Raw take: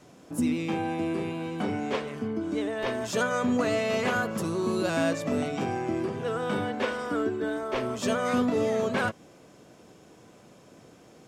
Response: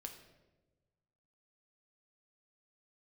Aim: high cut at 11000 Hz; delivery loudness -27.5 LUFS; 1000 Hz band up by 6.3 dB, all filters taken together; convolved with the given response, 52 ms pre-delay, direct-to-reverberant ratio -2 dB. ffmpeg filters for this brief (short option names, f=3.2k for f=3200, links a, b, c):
-filter_complex "[0:a]lowpass=11k,equalizer=f=1k:t=o:g=8.5,asplit=2[a][b];[1:a]atrim=start_sample=2205,adelay=52[c];[b][c]afir=irnorm=-1:irlink=0,volume=6.5dB[d];[a][d]amix=inputs=2:normalize=0,volume=-5.5dB"